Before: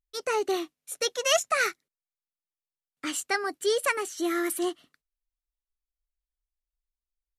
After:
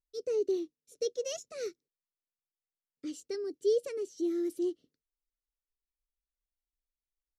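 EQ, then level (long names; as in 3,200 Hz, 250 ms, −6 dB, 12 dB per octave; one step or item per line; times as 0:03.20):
drawn EQ curve 210 Hz 0 dB, 480 Hz +5 dB, 780 Hz −24 dB, 1,700 Hz −23 dB, 5,500 Hz −5 dB, 9,500 Hz −18 dB
−5.5 dB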